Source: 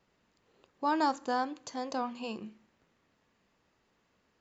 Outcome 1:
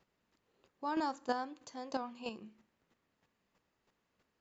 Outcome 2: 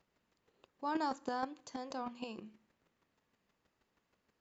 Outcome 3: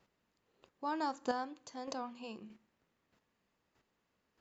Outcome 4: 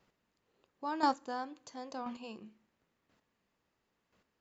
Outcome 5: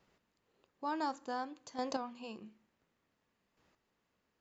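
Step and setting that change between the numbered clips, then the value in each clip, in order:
chopper, rate: 3.1, 6.3, 1.6, 0.97, 0.56 Hz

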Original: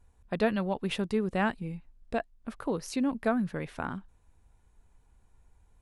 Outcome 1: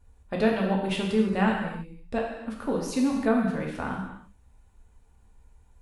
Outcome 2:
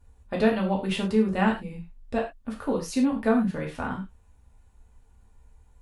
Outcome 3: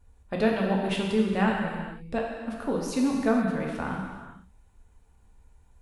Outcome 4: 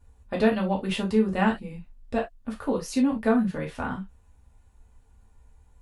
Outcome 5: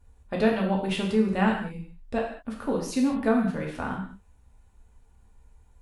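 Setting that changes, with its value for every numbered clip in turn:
non-linear reverb, gate: 350, 130, 520, 90, 230 ms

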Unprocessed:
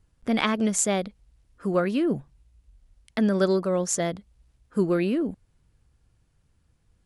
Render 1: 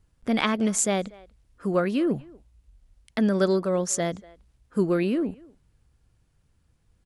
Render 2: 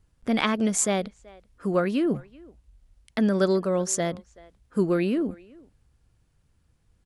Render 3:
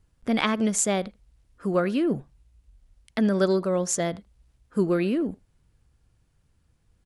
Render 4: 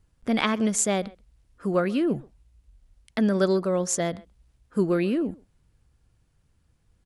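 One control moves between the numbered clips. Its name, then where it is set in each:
speakerphone echo, time: 240, 380, 80, 130 ms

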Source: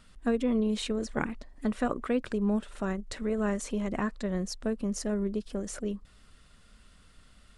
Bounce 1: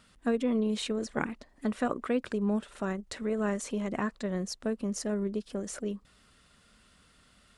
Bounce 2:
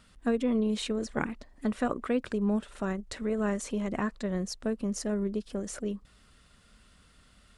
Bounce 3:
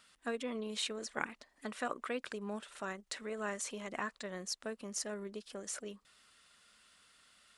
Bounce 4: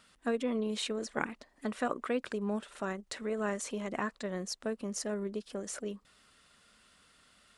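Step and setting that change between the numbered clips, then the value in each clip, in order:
HPF, cutoff: 130, 42, 1300, 460 Hz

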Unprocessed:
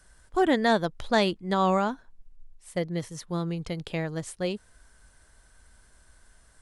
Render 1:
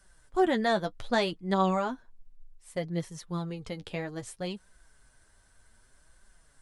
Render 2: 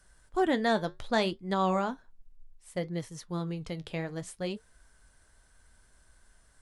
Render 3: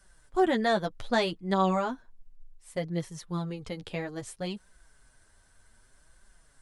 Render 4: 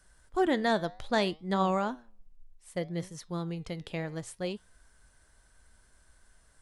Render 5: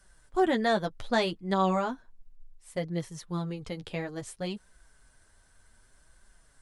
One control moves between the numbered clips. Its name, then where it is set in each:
flange, regen: +29, -71, +5, +88, -15%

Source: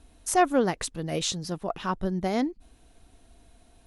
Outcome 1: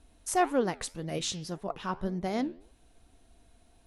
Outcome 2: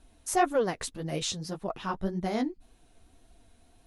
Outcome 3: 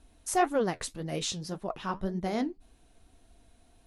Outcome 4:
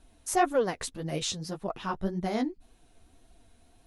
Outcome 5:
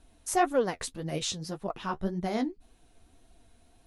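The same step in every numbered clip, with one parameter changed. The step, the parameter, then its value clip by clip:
flange, regen: +86, -12, -59, +9, +31%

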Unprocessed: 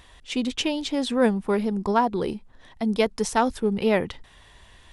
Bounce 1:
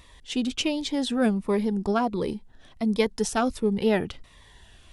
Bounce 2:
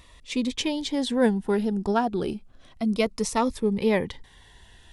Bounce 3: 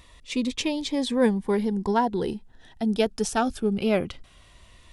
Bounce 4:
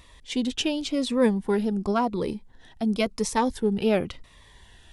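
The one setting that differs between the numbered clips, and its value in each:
cascading phaser, rate: 1.4, 0.31, 0.2, 0.94 Hz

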